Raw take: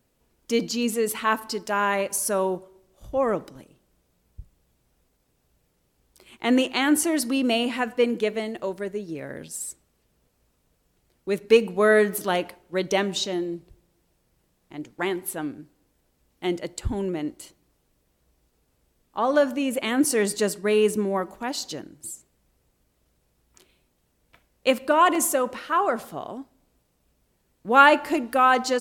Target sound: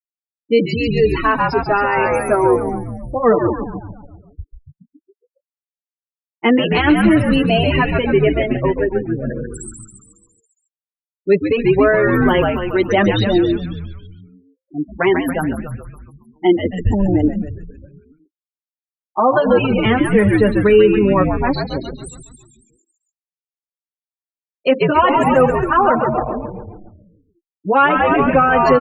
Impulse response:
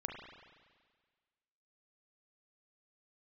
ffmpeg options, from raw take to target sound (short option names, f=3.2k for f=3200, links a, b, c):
-filter_complex "[0:a]acrossover=split=2800[a][b];[b]acompressor=threshold=-36dB:ratio=4:attack=1:release=60[c];[a][c]amix=inputs=2:normalize=0,afftfilt=real='re*gte(hypot(re,im),0.0447)':imag='im*gte(hypot(re,im),0.0447)':win_size=1024:overlap=0.75,asplit=2[d][e];[e]asplit=7[f][g][h][i][j][k][l];[f]adelay=138,afreqshift=-88,volume=-6dB[m];[g]adelay=276,afreqshift=-176,volume=-11dB[n];[h]adelay=414,afreqshift=-264,volume=-16.1dB[o];[i]adelay=552,afreqshift=-352,volume=-21.1dB[p];[j]adelay=690,afreqshift=-440,volume=-26.1dB[q];[k]adelay=828,afreqshift=-528,volume=-31.2dB[r];[l]adelay=966,afreqshift=-616,volume=-36.2dB[s];[m][n][o][p][q][r][s]amix=inputs=7:normalize=0[t];[d][t]amix=inputs=2:normalize=0,alimiter=level_in=15.5dB:limit=-1dB:release=50:level=0:latency=1,asplit=2[u][v];[v]adelay=6.3,afreqshift=-0.3[w];[u][w]amix=inputs=2:normalize=1,volume=-1dB"